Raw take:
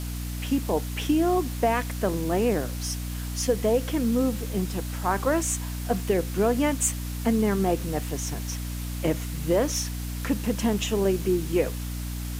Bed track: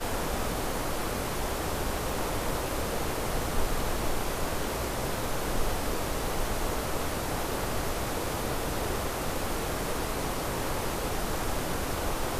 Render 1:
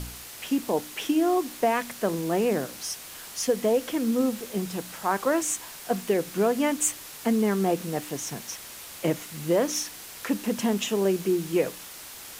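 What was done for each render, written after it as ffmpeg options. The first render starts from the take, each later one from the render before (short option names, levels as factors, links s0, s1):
-af "bandreject=f=60:t=h:w=4,bandreject=f=120:t=h:w=4,bandreject=f=180:t=h:w=4,bandreject=f=240:t=h:w=4,bandreject=f=300:t=h:w=4"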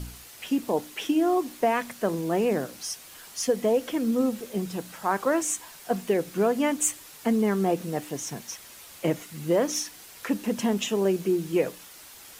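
-af "afftdn=nr=6:nf=-43"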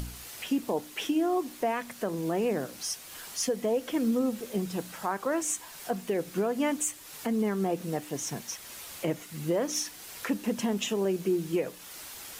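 -af "alimiter=limit=0.112:level=0:latency=1:release=284,acompressor=mode=upward:threshold=0.0141:ratio=2.5"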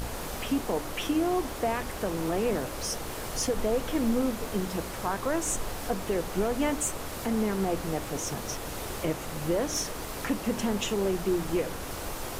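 -filter_complex "[1:a]volume=0.501[s0];[0:a][s0]amix=inputs=2:normalize=0"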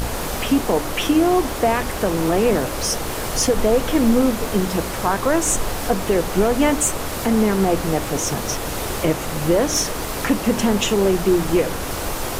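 -af "volume=3.35"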